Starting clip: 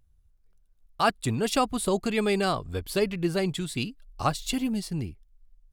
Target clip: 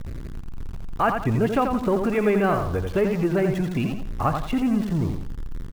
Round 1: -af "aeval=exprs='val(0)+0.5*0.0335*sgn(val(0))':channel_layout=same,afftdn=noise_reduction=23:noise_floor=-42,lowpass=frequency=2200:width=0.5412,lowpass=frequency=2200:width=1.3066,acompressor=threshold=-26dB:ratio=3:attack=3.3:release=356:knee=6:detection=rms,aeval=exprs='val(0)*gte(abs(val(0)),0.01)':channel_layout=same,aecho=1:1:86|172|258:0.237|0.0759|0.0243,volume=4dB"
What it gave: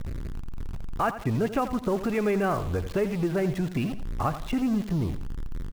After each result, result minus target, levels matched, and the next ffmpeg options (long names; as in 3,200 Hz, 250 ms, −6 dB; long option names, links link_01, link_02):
downward compressor: peak gain reduction +5 dB; echo-to-direct −6.5 dB
-af "aeval=exprs='val(0)+0.5*0.0335*sgn(val(0))':channel_layout=same,afftdn=noise_reduction=23:noise_floor=-42,lowpass=frequency=2200:width=0.5412,lowpass=frequency=2200:width=1.3066,acompressor=threshold=-18.5dB:ratio=3:attack=3.3:release=356:knee=6:detection=rms,aeval=exprs='val(0)*gte(abs(val(0)),0.01)':channel_layout=same,aecho=1:1:86|172|258:0.237|0.0759|0.0243,volume=4dB"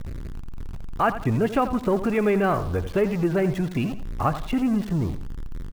echo-to-direct −6.5 dB
-af "aeval=exprs='val(0)+0.5*0.0335*sgn(val(0))':channel_layout=same,afftdn=noise_reduction=23:noise_floor=-42,lowpass=frequency=2200:width=0.5412,lowpass=frequency=2200:width=1.3066,acompressor=threshold=-18.5dB:ratio=3:attack=3.3:release=356:knee=6:detection=rms,aeval=exprs='val(0)*gte(abs(val(0)),0.01)':channel_layout=same,aecho=1:1:86|172|258|344:0.501|0.16|0.0513|0.0164,volume=4dB"